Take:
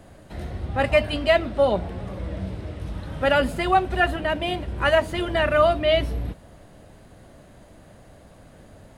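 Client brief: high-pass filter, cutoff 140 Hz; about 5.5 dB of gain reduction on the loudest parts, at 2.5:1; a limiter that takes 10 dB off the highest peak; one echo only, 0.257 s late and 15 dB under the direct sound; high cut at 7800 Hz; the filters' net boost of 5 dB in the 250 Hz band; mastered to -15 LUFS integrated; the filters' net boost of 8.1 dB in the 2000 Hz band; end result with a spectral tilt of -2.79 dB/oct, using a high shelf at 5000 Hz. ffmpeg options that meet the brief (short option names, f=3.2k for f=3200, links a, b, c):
-af "highpass=140,lowpass=7.8k,equalizer=f=250:t=o:g=7,equalizer=f=2k:t=o:g=8.5,highshelf=f=5k:g=8.5,acompressor=threshold=-18dB:ratio=2.5,alimiter=limit=-16dB:level=0:latency=1,aecho=1:1:257:0.178,volume=11.5dB"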